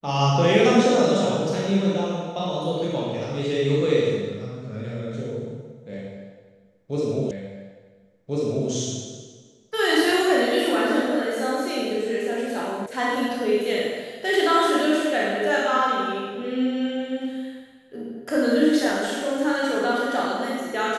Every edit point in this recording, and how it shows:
7.31 repeat of the last 1.39 s
12.86 sound cut off

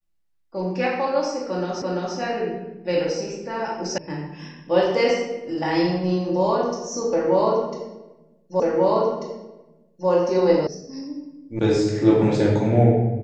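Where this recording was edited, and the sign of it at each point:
1.82 repeat of the last 0.34 s
3.98 sound cut off
8.6 repeat of the last 1.49 s
10.67 sound cut off
11.59 sound cut off

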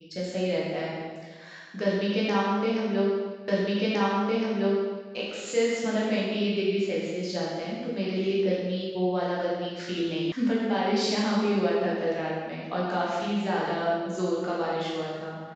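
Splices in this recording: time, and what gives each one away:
3.48 repeat of the last 1.66 s
10.32 sound cut off

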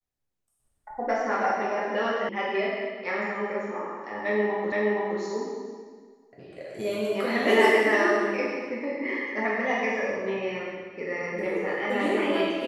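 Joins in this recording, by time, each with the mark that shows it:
2.29 sound cut off
4.72 repeat of the last 0.47 s

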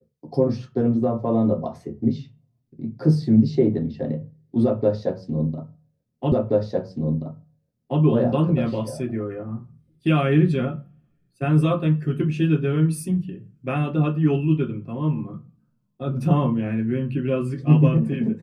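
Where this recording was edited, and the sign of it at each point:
6.32 repeat of the last 1.68 s

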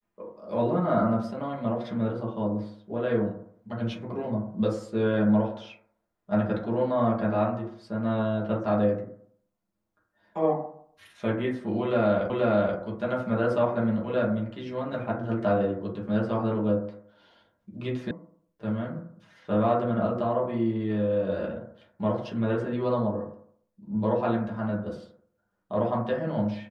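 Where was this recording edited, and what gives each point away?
12.3 repeat of the last 0.48 s
18.11 sound cut off

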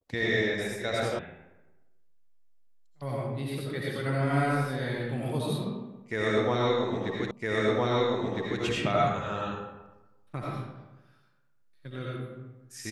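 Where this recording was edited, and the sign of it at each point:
1.19 sound cut off
7.31 repeat of the last 1.31 s

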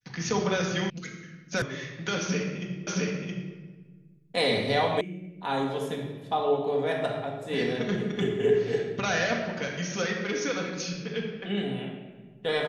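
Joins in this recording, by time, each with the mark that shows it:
0.9 sound cut off
1.62 sound cut off
2.87 repeat of the last 0.67 s
5.01 sound cut off

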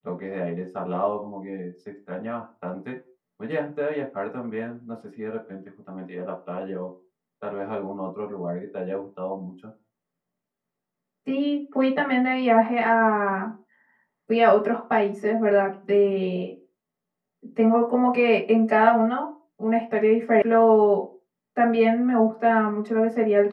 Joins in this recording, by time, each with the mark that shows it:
20.42 sound cut off

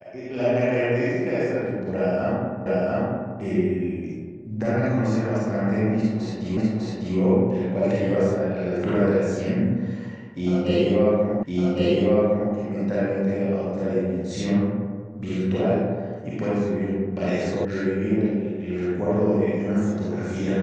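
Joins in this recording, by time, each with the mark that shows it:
2.66 repeat of the last 0.69 s
6.57 repeat of the last 0.6 s
11.43 repeat of the last 1.11 s
17.65 sound cut off

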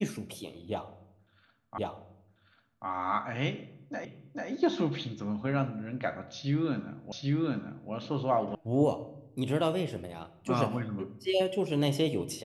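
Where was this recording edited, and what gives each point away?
1.78 repeat of the last 1.09 s
4.05 repeat of the last 0.44 s
7.12 repeat of the last 0.79 s
8.55 sound cut off

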